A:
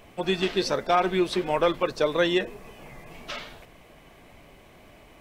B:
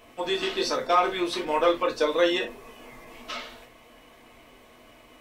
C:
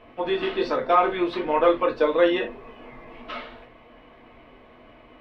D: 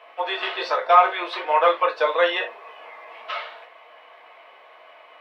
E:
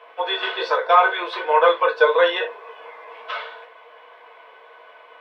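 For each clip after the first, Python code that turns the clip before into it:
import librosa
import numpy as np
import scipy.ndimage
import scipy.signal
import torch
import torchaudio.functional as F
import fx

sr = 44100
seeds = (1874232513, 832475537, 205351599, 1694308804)

y1 = fx.low_shelf(x, sr, hz=250.0, db=-9.0)
y1 = fx.rev_gated(y1, sr, seeds[0], gate_ms=90, shape='falling', drr_db=0.0)
y1 = y1 * 10.0 ** (-2.0 / 20.0)
y2 = fx.air_absorb(y1, sr, metres=400.0)
y2 = y2 * 10.0 ** (4.5 / 20.0)
y3 = scipy.signal.sosfilt(scipy.signal.butter(4, 610.0, 'highpass', fs=sr, output='sos'), y2)
y3 = y3 * 10.0 ** (5.5 / 20.0)
y4 = fx.small_body(y3, sr, hz=(460.0, 990.0, 1500.0, 3400.0), ring_ms=55, db=13)
y4 = y4 * 10.0 ** (-1.5 / 20.0)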